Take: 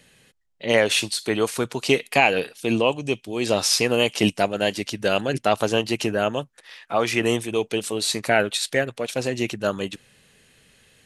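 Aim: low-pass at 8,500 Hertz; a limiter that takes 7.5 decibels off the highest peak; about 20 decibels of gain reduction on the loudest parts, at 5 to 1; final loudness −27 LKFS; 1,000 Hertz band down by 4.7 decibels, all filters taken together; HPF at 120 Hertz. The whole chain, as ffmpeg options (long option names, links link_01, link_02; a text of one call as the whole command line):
ffmpeg -i in.wav -af "highpass=120,lowpass=8500,equalizer=frequency=1000:width_type=o:gain=-7.5,acompressor=threshold=-38dB:ratio=5,volume=14.5dB,alimiter=limit=-14.5dB:level=0:latency=1" out.wav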